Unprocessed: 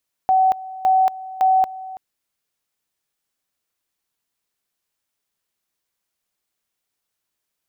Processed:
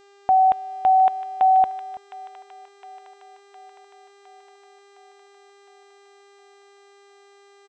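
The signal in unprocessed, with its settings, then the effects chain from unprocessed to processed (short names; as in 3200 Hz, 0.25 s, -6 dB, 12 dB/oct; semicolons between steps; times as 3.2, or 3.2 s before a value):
two-level tone 756 Hz -12 dBFS, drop 18 dB, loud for 0.23 s, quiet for 0.33 s, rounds 3
downsampling 8000 Hz; buzz 400 Hz, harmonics 20, -53 dBFS -6 dB/oct; thin delay 0.711 s, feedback 62%, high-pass 1600 Hz, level -8 dB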